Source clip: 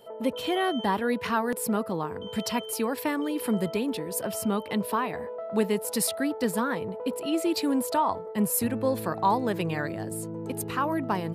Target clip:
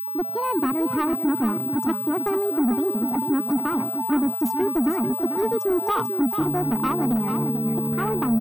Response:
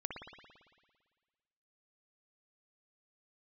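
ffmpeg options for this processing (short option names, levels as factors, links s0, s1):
-af "firequalizer=gain_entry='entry(310,0);entry(2000,-25);entry(6400,-16)':delay=0.05:min_phase=1,anlmdn=0.251,equalizer=f=170:w=7.4:g=11,aecho=1:1:1.2:0.83,dynaudnorm=f=220:g=5:m=1.58,alimiter=limit=0.178:level=0:latency=1:release=487,acontrast=52,aeval=exprs='val(0)+0.0562*sin(2*PI*12000*n/s)':c=same,asoftclip=type=tanh:threshold=0.168,aecho=1:1:598:0.398,asetrate=59535,aresample=44100,volume=0.794"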